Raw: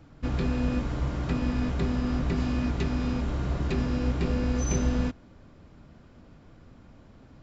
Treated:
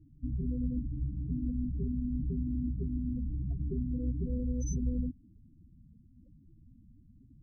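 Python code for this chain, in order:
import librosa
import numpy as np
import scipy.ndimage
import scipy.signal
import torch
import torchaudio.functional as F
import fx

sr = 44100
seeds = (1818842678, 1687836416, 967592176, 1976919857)

p1 = 10.0 ** (-23.5 / 20.0) * np.tanh(x / 10.0 ** (-23.5 / 20.0))
p2 = x + (p1 * 10.0 ** (-9.5 / 20.0))
p3 = fx.spec_topn(p2, sr, count=8)
y = p3 * 10.0 ** (-7.0 / 20.0)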